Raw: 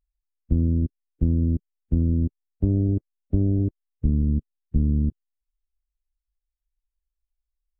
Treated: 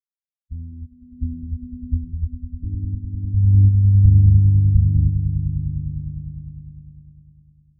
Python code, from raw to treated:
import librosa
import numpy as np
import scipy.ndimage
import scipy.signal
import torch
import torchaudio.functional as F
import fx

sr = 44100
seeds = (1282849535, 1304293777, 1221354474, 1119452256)

y = fx.echo_swell(x, sr, ms=101, loudest=8, wet_db=-6.0)
y = fx.spectral_expand(y, sr, expansion=2.5)